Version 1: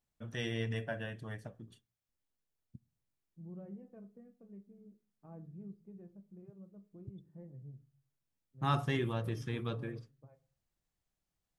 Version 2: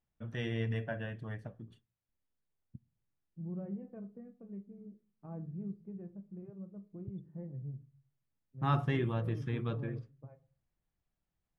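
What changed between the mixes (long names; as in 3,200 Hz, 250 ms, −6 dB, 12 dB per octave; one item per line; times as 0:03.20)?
second voice +5.0 dB
master: add bass and treble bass +3 dB, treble −13 dB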